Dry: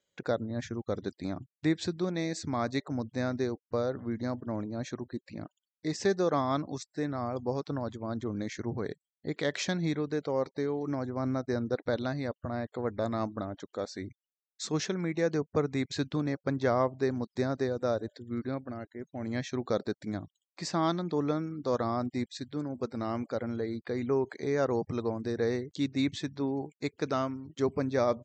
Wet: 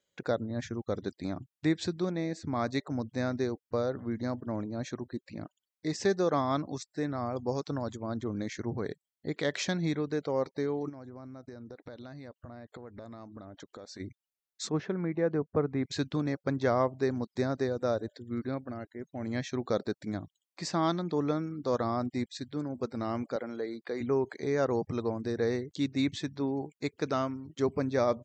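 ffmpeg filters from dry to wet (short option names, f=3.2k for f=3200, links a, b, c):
-filter_complex "[0:a]asettb=1/sr,asplit=3[a][b][c];[a]atrim=end=2.134[d];[b]atrim=start=2.13:end=2.56,asetpts=PTS-STARTPTS,afade=t=in:d=0.004:c=qsin,afade=t=out:st=0.426:d=0.004:c=qsin,highshelf=f=2.5k:g=-11[e];[c]atrim=start=2.556[f];[d][e]acrossfade=d=0.004:c1=hsin:c2=qsin[g];[g][f]acrossfade=d=0.004:c1=qsin:c2=hsin,asettb=1/sr,asplit=3[h][i][j];[h]atrim=end=7.464[k];[i]atrim=start=7.46:end=8,asetpts=PTS-STARTPTS,afade=t=in:d=0.004:c=qsin,afade=t=out:st=0.536:d=0.004:c=qsin,lowpass=f=7.2k:t=q:w=3.2[l];[j]atrim=start=7.996[m];[k][l]acrossfade=d=0.004:c1=hsin:c2=qsin[n];[n][m]acrossfade=d=0.004:c1=qsin:c2=hsin,asplit=3[o][p][q];[o]afade=t=out:st=10.88:d=0.02[r];[p]acompressor=threshold=-41dB:ratio=20:attack=3.2:release=140:knee=1:detection=peak,afade=t=in:st=10.88:d=0.02,afade=t=out:st=13.99:d=0.02[s];[q]afade=t=in:st=13.99:d=0.02[t];[r][s][t]amix=inputs=3:normalize=0,asplit=3[u][v][w];[u]afade=t=out:st=14.68:d=0.02[x];[v]lowpass=1.6k,afade=t=in:st=14.68:d=0.02,afade=t=out:st=15.83:d=0.02[y];[w]afade=t=in:st=15.83:d=0.02[z];[x][y][z]amix=inputs=3:normalize=0,asettb=1/sr,asplit=3[aa][ab][ac];[aa]atrim=end=23.364[ad];[ab]atrim=start=23.36:end=24.01,asetpts=PTS-STARTPTS,afade=t=in:d=0.004:c=qsin,afade=t=out:st=0.646:d=0.004:c=qsin,highpass=300[ae];[ac]atrim=start=24.006[af];[ad][ae]acrossfade=d=0.004:c1=hsin:c2=qsin[ag];[ag][af]acrossfade=d=0.004:c1=qsin:c2=hsin"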